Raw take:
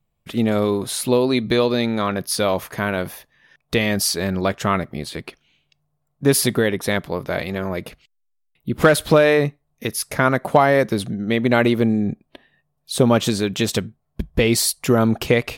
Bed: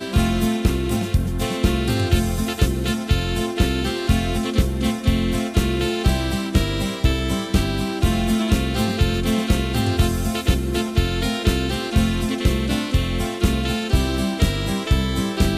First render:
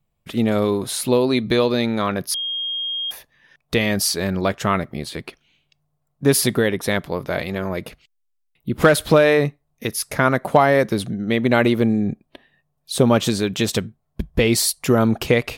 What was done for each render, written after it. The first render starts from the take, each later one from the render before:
0:02.34–0:03.11: beep over 3,240 Hz −22.5 dBFS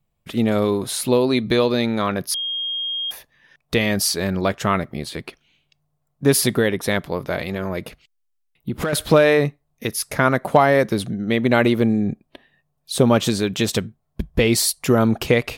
0:07.34–0:08.93: downward compressor, threshold −19 dBFS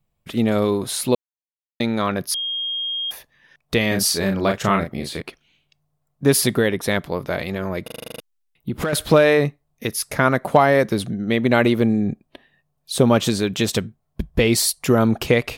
0:01.15–0:01.80: silence
0:03.88–0:05.22: double-tracking delay 36 ms −5 dB
0:07.84: stutter in place 0.04 s, 9 plays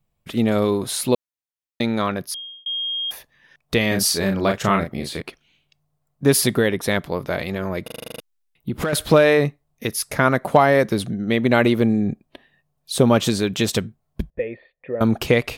0:02.01–0:02.66: fade out
0:14.30–0:15.01: formant resonators in series e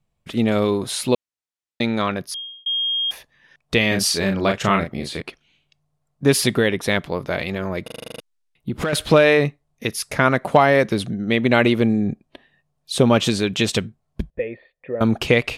dynamic equaliser 2,700 Hz, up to +5 dB, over −37 dBFS, Q 1.7
low-pass filter 9,900 Hz 12 dB per octave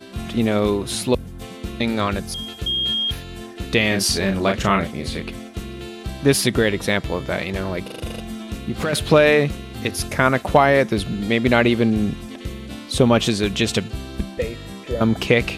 mix in bed −12 dB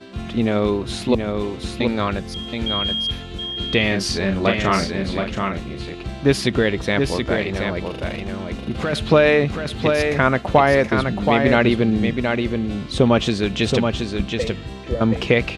high-frequency loss of the air 81 metres
single-tap delay 725 ms −5 dB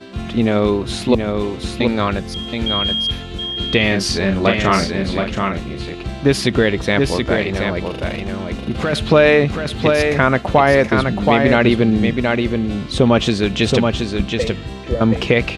level +3.5 dB
brickwall limiter −2 dBFS, peak gain reduction 3 dB

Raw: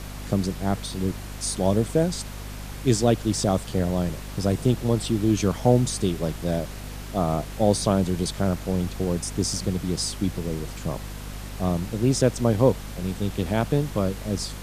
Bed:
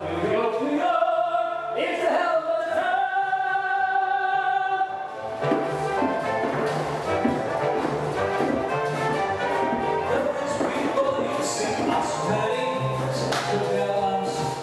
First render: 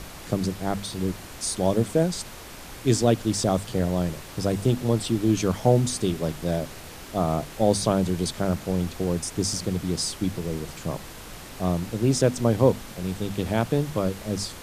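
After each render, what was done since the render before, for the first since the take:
mains-hum notches 50/100/150/200/250 Hz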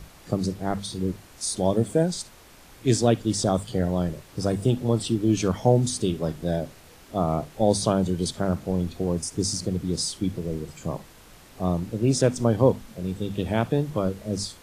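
noise reduction from a noise print 9 dB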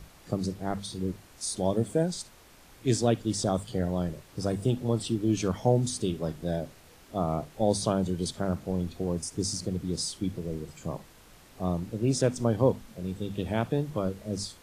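level −4.5 dB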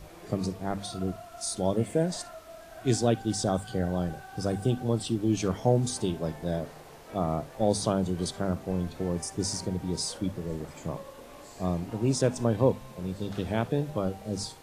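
mix in bed −23 dB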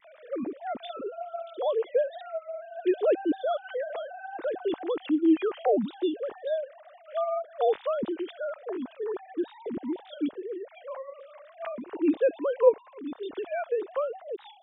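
three sine waves on the formant tracks
pitch vibrato 1.9 Hz 26 cents

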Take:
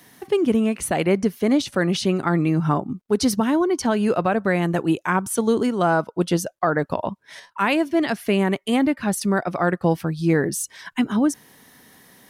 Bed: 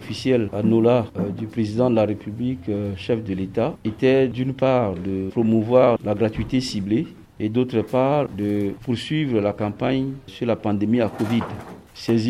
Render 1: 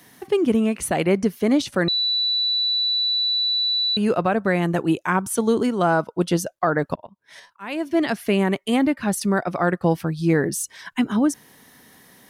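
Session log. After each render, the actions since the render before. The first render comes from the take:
0:01.88–0:03.97: beep over 3,960 Hz −18.5 dBFS
0:06.95–0:07.91: volume swells 439 ms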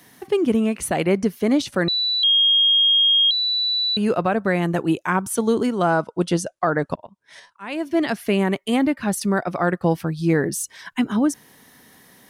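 0:02.23–0:03.31: beep over 3,250 Hz −13 dBFS
0:05.90–0:07.75: bad sample-rate conversion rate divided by 2×, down none, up filtered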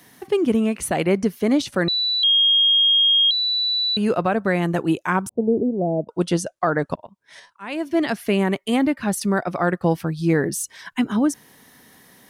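0:05.29–0:06.09: Butterworth low-pass 670 Hz 48 dB per octave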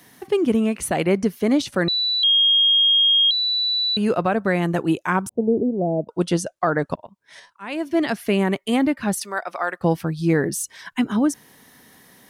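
0:09.19–0:09.80: high-pass filter 710 Hz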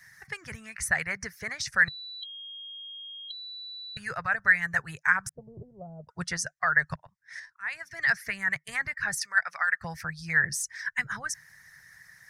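harmonic and percussive parts rebalanced harmonic −13 dB
drawn EQ curve 150 Hz 0 dB, 290 Hz −30 dB, 480 Hz −19 dB, 1,100 Hz −7 dB, 1,800 Hz +11 dB, 3,100 Hz −15 dB, 5,300 Hz +3 dB, 13,000 Hz −9 dB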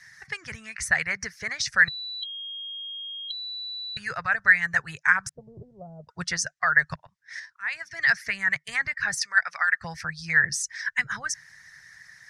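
low-pass filter 5,900 Hz 12 dB per octave
high-shelf EQ 2,200 Hz +9 dB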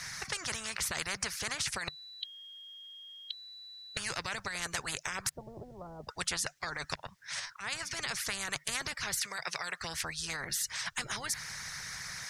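brickwall limiter −15.5 dBFS, peak gain reduction 10.5 dB
every bin compressed towards the loudest bin 4 to 1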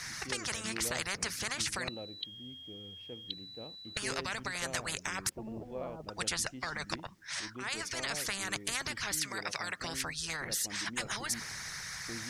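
mix in bed −26.5 dB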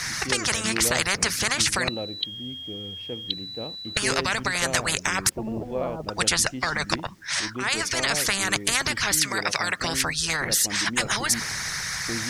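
level +12 dB

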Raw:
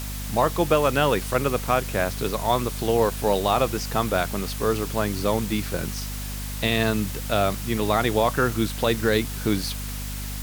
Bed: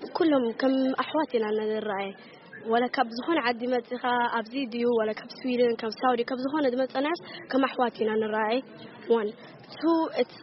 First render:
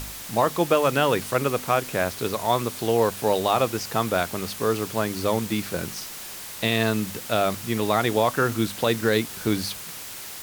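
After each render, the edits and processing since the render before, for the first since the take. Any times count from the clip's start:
hum removal 50 Hz, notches 5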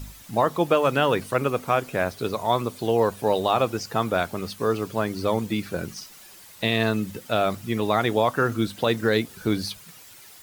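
broadband denoise 12 dB, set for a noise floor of −37 dBFS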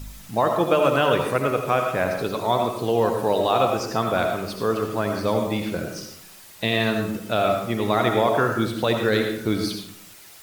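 comb and all-pass reverb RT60 0.74 s, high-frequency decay 0.6×, pre-delay 40 ms, DRR 3 dB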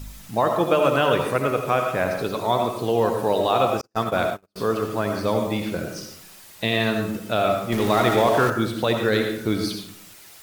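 0:03.81–0:04.56: noise gate −25 dBFS, range −49 dB
0:07.72–0:08.50: converter with a step at zero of −25.5 dBFS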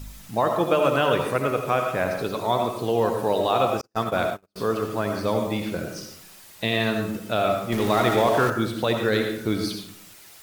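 level −1.5 dB

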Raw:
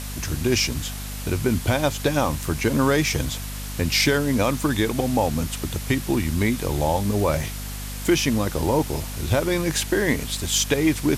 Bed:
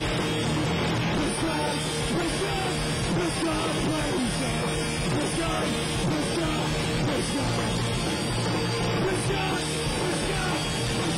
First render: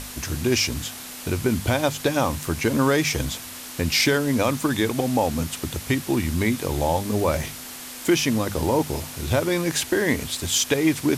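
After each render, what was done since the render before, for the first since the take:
mains-hum notches 50/100/150/200 Hz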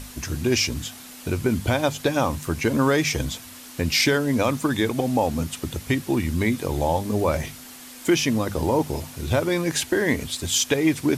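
broadband denoise 6 dB, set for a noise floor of −37 dBFS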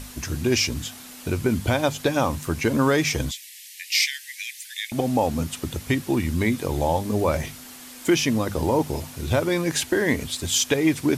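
0:03.31–0:04.92: Butterworth high-pass 1,800 Hz 96 dB per octave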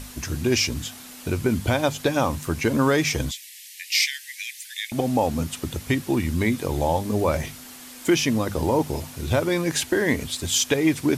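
no processing that can be heard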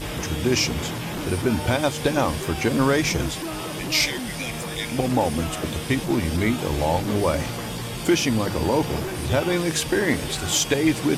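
mix in bed −4.5 dB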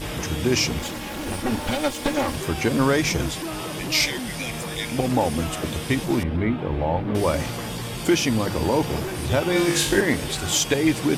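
0:00.79–0:02.37: lower of the sound and its delayed copy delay 3.6 ms
0:06.23–0:07.15: high-frequency loss of the air 490 metres
0:09.53–0:10.01: flutter between parallel walls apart 3.5 metres, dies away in 0.45 s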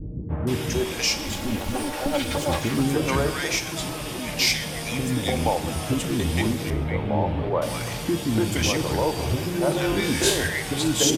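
three-band delay without the direct sound lows, mids, highs 290/470 ms, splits 340/1,400 Hz
dense smooth reverb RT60 1 s, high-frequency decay 1×, DRR 10 dB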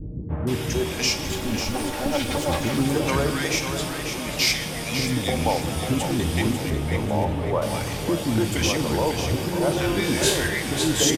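repeating echo 545 ms, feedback 38%, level −8 dB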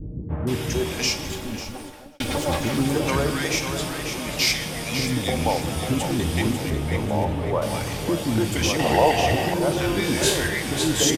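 0:00.98–0:02.20: fade out
0:08.79–0:09.54: hollow resonant body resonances 720/1,900/2,700 Hz, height 16 dB, ringing for 20 ms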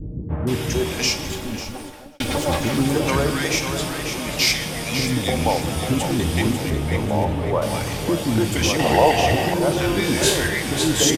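level +2.5 dB

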